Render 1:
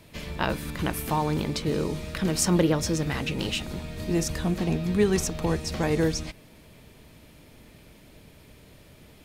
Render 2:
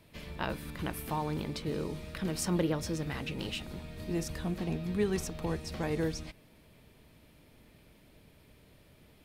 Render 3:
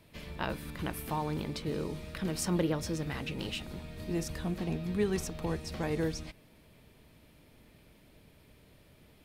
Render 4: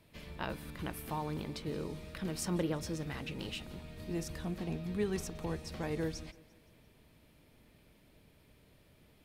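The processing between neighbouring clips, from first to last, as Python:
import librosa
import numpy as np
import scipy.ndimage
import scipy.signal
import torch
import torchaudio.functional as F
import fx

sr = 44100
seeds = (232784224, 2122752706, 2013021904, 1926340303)

y1 = fx.peak_eq(x, sr, hz=6700.0, db=-4.5, octaves=0.64)
y1 = y1 * librosa.db_to_amplitude(-8.0)
y2 = y1
y3 = fx.echo_feedback(y2, sr, ms=172, feedback_pct=56, wet_db=-23.0)
y3 = y3 * librosa.db_to_amplitude(-4.0)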